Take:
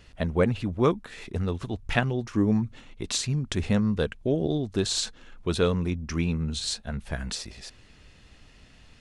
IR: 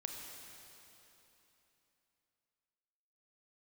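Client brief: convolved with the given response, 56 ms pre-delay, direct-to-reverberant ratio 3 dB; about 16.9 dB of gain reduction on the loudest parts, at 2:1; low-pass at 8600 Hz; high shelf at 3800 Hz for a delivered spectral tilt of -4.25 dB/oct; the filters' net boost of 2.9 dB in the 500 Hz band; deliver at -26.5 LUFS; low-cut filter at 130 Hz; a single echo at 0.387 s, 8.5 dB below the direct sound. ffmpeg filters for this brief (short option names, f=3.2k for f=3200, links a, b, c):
-filter_complex "[0:a]highpass=130,lowpass=8.6k,equalizer=f=500:t=o:g=3.5,highshelf=f=3.8k:g=5.5,acompressor=threshold=-48dB:ratio=2,aecho=1:1:387:0.376,asplit=2[a][b];[1:a]atrim=start_sample=2205,adelay=56[c];[b][c]afir=irnorm=-1:irlink=0,volume=-2dB[d];[a][d]amix=inputs=2:normalize=0,volume=12dB"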